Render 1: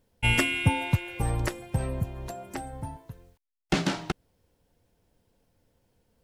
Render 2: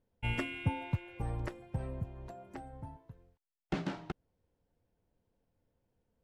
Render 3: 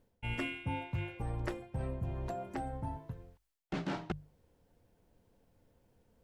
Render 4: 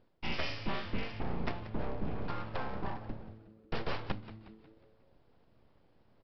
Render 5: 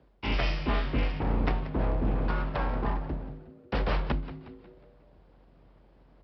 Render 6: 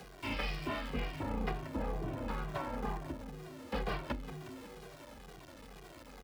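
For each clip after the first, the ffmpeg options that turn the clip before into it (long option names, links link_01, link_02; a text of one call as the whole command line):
ffmpeg -i in.wav -af "lowpass=frequency=1600:poles=1,volume=-9dB" out.wav
ffmpeg -i in.wav -af "bandreject=frequency=50:width_type=h:width=6,bandreject=frequency=100:width_type=h:width=6,bandreject=frequency=150:width_type=h:width=6,areverse,acompressor=threshold=-44dB:ratio=8,areverse,volume=10dB" out.wav
ffmpeg -i in.wav -filter_complex "[0:a]aresample=11025,aeval=exprs='abs(val(0))':channel_layout=same,aresample=44100,asplit=6[link_01][link_02][link_03][link_04][link_05][link_06];[link_02]adelay=181,afreqshift=-110,volume=-14dB[link_07];[link_03]adelay=362,afreqshift=-220,volume=-20.2dB[link_08];[link_04]adelay=543,afreqshift=-330,volume=-26.4dB[link_09];[link_05]adelay=724,afreqshift=-440,volume=-32.6dB[link_10];[link_06]adelay=905,afreqshift=-550,volume=-38.8dB[link_11];[link_01][link_07][link_08][link_09][link_10][link_11]amix=inputs=6:normalize=0,volume=4dB" out.wav
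ffmpeg -i in.wav -af "aemphasis=mode=reproduction:type=50fm,afreqshift=45,volume=6.5dB" out.wav
ffmpeg -i in.wav -filter_complex "[0:a]aeval=exprs='val(0)+0.5*0.0141*sgn(val(0))':channel_layout=same,lowshelf=frequency=94:gain=-9,asplit=2[link_01][link_02];[link_02]adelay=2,afreqshift=-2.1[link_03];[link_01][link_03]amix=inputs=2:normalize=1,volume=-4dB" out.wav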